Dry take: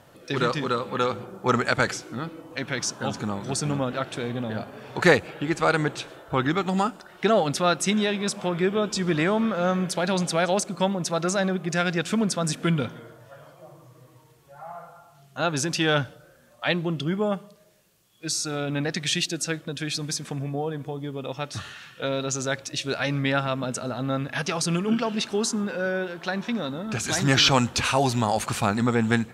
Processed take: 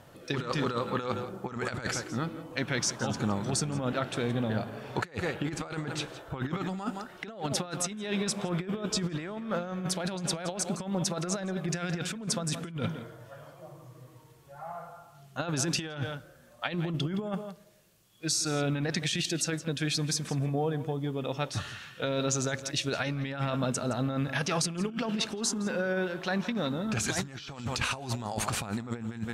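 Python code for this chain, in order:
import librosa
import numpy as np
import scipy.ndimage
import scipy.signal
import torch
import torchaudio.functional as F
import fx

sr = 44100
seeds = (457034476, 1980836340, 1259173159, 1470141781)

y = fx.low_shelf(x, sr, hz=170.0, db=4.0)
y = y + 10.0 ** (-15.5 / 20.0) * np.pad(y, (int(167 * sr / 1000.0), 0))[:len(y)]
y = fx.over_compress(y, sr, threshold_db=-26.0, ratio=-0.5)
y = F.gain(torch.from_numpy(y), -4.5).numpy()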